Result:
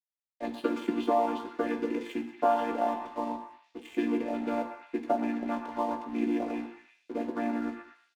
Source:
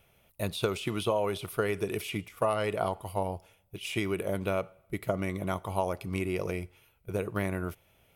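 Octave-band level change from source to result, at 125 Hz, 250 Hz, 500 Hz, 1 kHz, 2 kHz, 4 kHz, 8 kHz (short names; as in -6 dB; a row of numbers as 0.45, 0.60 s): under -15 dB, +5.0 dB, -1.0 dB, +4.5 dB, -4.5 dB, -8.5 dB, under -10 dB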